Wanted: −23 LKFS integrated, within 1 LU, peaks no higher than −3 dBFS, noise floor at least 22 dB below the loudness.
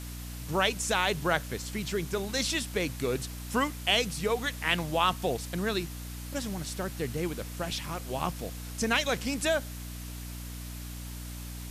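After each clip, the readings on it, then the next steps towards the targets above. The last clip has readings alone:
mains hum 60 Hz; hum harmonics up to 300 Hz; level of the hum −38 dBFS; background noise floor −40 dBFS; target noise floor −53 dBFS; integrated loudness −31.0 LKFS; sample peak −11.5 dBFS; target loudness −23.0 LKFS
→ hum removal 60 Hz, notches 5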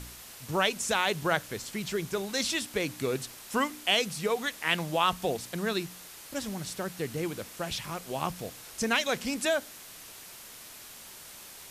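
mains hum none found; background noise floor −48 dBFS; target noise floor −53 dBFS
→ noise reduction from a noise print 6 dB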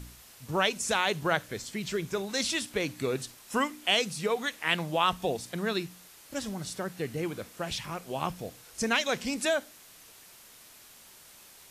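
background noise floor −54 dBFS; integrated loudness −30.5 LKFS; sample peak −11.5 dBFS; target loudness −23.0 LKFS
→ level +7.5 dB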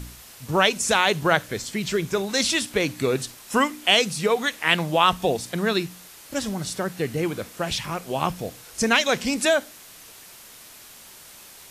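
integrated loudness −23.0 LKFS; sample peak −4.0 dBFS; background noise floor −46 dBFS

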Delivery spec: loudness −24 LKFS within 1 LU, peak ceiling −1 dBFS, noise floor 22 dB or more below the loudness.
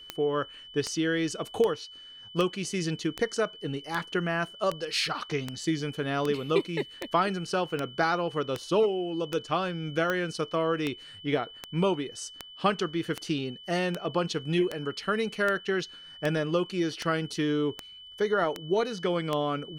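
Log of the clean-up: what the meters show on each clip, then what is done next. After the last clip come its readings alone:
number of clicks 26; interfering tone 3,000 Hz; level of the tone −45 dBFS; integrated loudness −29.5 LKFS; sample peak −10.5 dBFS; target loudness −24.0 LKFS
→ click removal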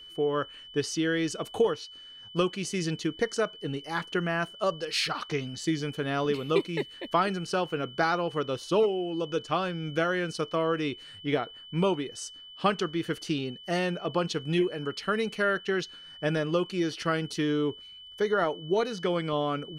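number of clicks 0; interfering tone 3,000 Hz; level of the tone −45 dBFS
→ notch filter 3,000 Hz, Q 30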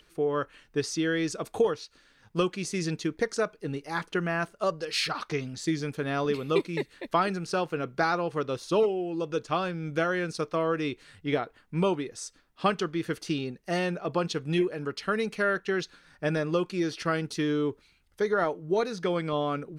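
interfering tone none found; integrated loudness −29.5 LKFS; sample peak −12.0 dBFS; target loudness −24.0 LKFS
→ level +5.5 dB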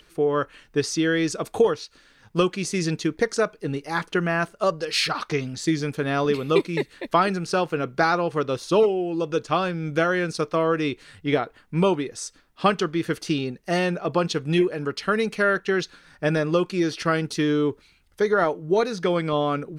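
integrated loudness −24.0 LKFS; sample peak −6.5 dBFS; background noise floor −58 dBFS

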